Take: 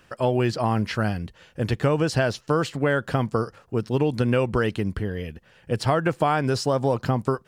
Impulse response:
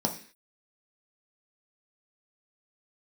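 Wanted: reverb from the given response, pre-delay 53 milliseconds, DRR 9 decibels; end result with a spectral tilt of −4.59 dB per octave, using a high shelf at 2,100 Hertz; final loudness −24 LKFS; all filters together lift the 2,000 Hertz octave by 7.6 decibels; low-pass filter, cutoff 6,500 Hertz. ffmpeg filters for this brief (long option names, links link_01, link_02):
-filter_complex "[0:a]lowpass=6500,equalizer=frequency=2000:width_type=o:gain=7,highshelf=frequency=2100:gain=6.5,asplit=2[link_01][link_02];[1:a]atrim=start_sample=2205,adelay=53[link_03];[link_02][link_03]afir=irnorm=-1:irlink=0,volume=-17dB[link_04];[link_01][link_04]amix=inputs=2:normalize=0,volume=-2.5dB"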